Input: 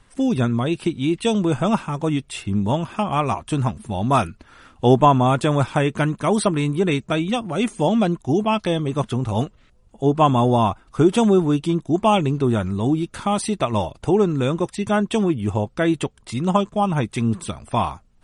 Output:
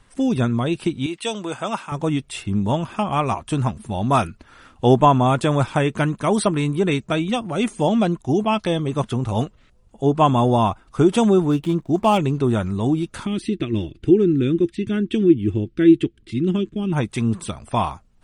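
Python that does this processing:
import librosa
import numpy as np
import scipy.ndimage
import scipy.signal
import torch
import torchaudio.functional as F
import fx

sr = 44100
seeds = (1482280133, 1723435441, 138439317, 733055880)

y = fx.highpass(x, sr, hz=810.0, slope=6, at=(1.06, 1.92))
y = fx.median_filter(y, sr, points=9, at=(11.5, 12.18))
y = fx.curve_eq(y, sr, hz=(210.0, 340.0, 550.0, 950.0, 1600.0, 3100.0, 6700.0), db=(0, 9, -16, -25, -5, -2, -14), at=(13.25, 16.92), fade=0.02)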